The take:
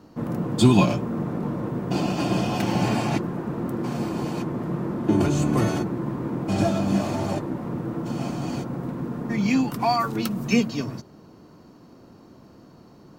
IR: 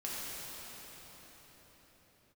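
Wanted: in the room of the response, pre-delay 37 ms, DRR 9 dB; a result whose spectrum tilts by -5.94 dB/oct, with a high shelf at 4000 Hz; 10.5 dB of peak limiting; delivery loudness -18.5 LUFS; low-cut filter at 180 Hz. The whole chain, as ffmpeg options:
-filter_complex "[0:a]highpass=180,highshelf=f=4k:g=-4.5,alimiter=limit=-17.5dB:level=0:latency=1,asplit=2[a][b];[1:a]atrim=start_sample=2205,adelay=37[c];[b][c]afir=irnorm=-1:irlink=0,volume=-13dB[d];[a][d]amix=inputs=2:normalize=0,volume=9.5dB"

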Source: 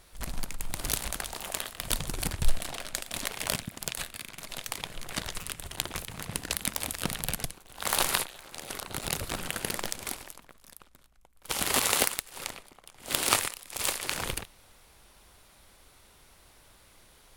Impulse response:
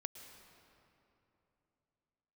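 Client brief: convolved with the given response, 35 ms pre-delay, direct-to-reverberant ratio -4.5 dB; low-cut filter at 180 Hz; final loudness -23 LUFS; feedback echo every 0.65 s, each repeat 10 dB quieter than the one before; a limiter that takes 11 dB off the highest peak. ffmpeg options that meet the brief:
-filter_complex "[0:a]highpass=180,alimiter=limit=-15dB:level=0:latency=1,aecho=1:1:650|1300|1950|2600:0.316|0.101|0.0324|0.0104,asplit=2[a][b];[1:a]atrim=start_sample=2205,adelay=35[c];[b][c]afir=irnorm=-1:irlink=0,volume=7.5dB[d];[a][d]amix=inputs=2:normalize=0,volume=6dB"

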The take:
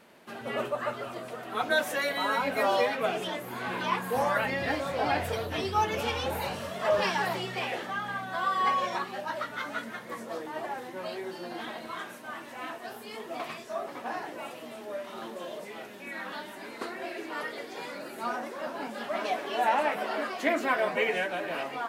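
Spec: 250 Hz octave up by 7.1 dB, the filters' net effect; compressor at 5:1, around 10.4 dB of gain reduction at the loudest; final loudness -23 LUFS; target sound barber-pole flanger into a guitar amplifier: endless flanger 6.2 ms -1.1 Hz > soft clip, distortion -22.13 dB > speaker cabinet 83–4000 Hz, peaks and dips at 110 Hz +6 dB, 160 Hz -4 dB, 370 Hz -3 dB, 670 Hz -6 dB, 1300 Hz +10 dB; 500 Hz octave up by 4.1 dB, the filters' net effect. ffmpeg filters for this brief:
-filter_complex "[0:a]equalizer=f=250:t=o:g=8,equalizer=f=500:t=o:g=6.5,acompressor=threshold=-27dB:ratio=5,asplit=2[a][b];[b]adelay=6.2,afreqshift=-1.1[c];[a][c]amix=inputs=2:normalize=1,asoftclip=threshold=-24dB,highpass=83,equalizer=f=110:t=q:w=4:g=6,equalizer=f=160:t=q:w=4:g=-4,equalizer=f=370:t=q:w=4:g=-3,equalizer=f=670:t=q:w=4:g=-6,equalizer=f=1.3k:t=q:w=4:g=10,lowpass=f=4k:w=0.5412,lowpass=f=4k:w=1.3066,volume=12.5dB"

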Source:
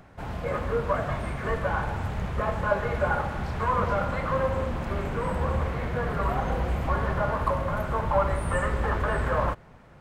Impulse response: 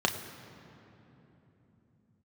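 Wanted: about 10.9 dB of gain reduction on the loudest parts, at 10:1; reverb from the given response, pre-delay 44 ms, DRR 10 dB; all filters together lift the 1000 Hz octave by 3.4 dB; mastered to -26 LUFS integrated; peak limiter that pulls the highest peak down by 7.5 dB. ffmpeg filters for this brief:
-filter_complex "[0:a]equalizer=f=1k:t=o:g=4,acompressor=threshold=-28dB:ratio=10,alimiter=level_in=2dB:limit=-24dB:level=0:latency=1,volume=-2dB,asplit=2[a][b];[1:a]atrim=start_sample=2205,adelay=44[c];[b][c]afir=irnorm=-1:irlink=0,volume=-20.5dB[d];[a][d]amix=inputs=2:normalize=0,volume=9dB"

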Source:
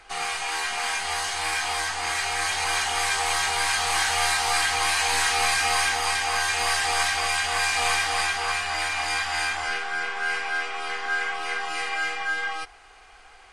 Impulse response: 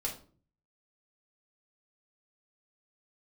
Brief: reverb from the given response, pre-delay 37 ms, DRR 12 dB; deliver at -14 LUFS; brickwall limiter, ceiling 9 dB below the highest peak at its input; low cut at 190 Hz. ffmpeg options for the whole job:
-filter_complex "[0:a]highpass=190,alimiter=limit=-20dB:level=0:latency=1,asplit=2[a][b];[1:a]atrim=start_sample=2205,adelay=37[c];[b][c]afir=irnorm=-1:irlink=0,volume=-14.5dB[d];[a][d]amix=inputs=2:normalize=0,volume=13.5dB"

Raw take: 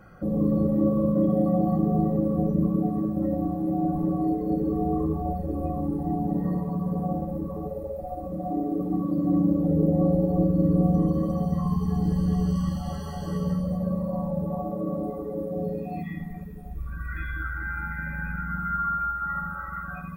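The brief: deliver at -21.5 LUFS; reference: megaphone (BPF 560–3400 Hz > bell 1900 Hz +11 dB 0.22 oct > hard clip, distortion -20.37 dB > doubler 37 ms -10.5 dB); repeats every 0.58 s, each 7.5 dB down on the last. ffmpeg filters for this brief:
-filter_complex "[0:a]highpass=560,lowpass=3.4k,equalizer=f=1.9k:t=o:w=0.22:g=11,aecho=1:1:580|1160|1740|2320|2900:0.422|0.177|0.0744|0.0312|0.0131,asoftclip=type=hard:threshold=-25.5dB,asplit=2[a][b];[b]adelay=37,volume=-10.5dB[c];[a][c]amix=inputs=2:normalize=0,volume=12dB"

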